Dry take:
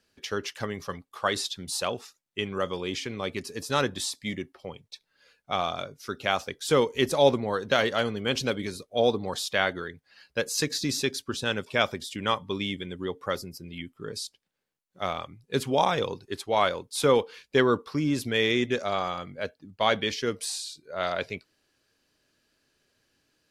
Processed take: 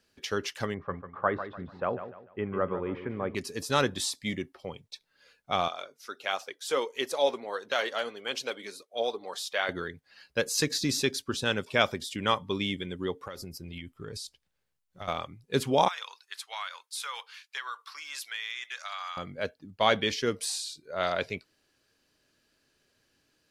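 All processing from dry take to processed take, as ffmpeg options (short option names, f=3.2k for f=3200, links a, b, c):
-filter_complex "[0:a]asettb=1/sr,asplit=3[a][b][c];[a]atrim=end=0.744[d];[b]atrim=start=0.74:end=3.35,asetpts=PTS-STARTPTS,afade=t=in:d=0.004:c=qsin,afade=t=out:st=2.606:d=0.004:c=qsin,lowpass=f=1.7k:w=0.5412,lowpass=f=1.7k:w=1.3066,aecho=1:1:147|294|441|588:0.299|0.102|0.0345|0.0117,atrim=end_sample=115101[e];[c]atrim=start=3.346[f];[d][e]acrossfade=d=0.004:c1=hsin:c2=qsin[g];[g][f]acrossfade=d=0.004:c1=qsin:c2=hsin,asettb=1/sr,asplit=3[h][i][j];[h]atrim=end=5.684[k];[i]atrim=start=5.68:end=9.69,asetpts=PTS-STARTPTS,afade=t=in:d=0.004:c=qsin,afade=t=out:st=4.006:d=0.004:c=qsin,highpass=470,flanger=delay=0.1:depth=5.1:regen=64:speed=1.5:shape=triangular[l];[j]atrim=start=9.686[m];[k][l]acrossfade=d=0.004:c1=hsin:c2=qsin[n];[n][m]acrossfade=d=0.004:c1=qsin:c2=hsin,asettb=1/sr,asplit=3[o][p][q];[o]atrim=end=13.204[r];[p]atrim=start=13.2:end=15.08,asetpts=PTS-STARTPTS,afade=t=in:d=0.004:c=qsin,afade=t=out:st=1.876:d=0.004:c=qsin,asubboost=boost=9.5:cutoff=110,acompressor=threshold=-35dB:ratio=16:attack=3.2:release=140:knee=1:detection=peak[s];[q]atrim=start=15.076[t];[r][s]acrossfade=d=0.004:c1=hsin:c2=qsin[u];[u][t]acrossfade=d=0.004:c1=qsin:c2=hsin,asettb=1/sr,asplit=3[v][w][x];[v]atrim=end=15.884[y];[w]atrim=start=15.88:end=19.17,asetpts=PTS-STARTPTS,afade=t=in:d=0.004:c=qsin,afade=t=out:st=3.286:d=0.004:c=qsin,highpass=f=1.1k:w=0.5412,highpass=f=1.1k:w=1.3066,acompressor=threshold=-33dB:ratio=4:attack=3.2:release=140:knee=1:detection=peak[z];[x]atrim=start=19.166[aa];[y][z]acrossfade=d=0.004:c1=hsin:c2=qsin[ab];[ab][aa]acrossfade=d=0.004:c1=qsin:c2=hsin"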